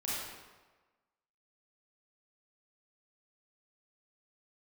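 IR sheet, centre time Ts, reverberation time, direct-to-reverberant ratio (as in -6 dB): 0.104 s, 1.3 s, -8.5 dB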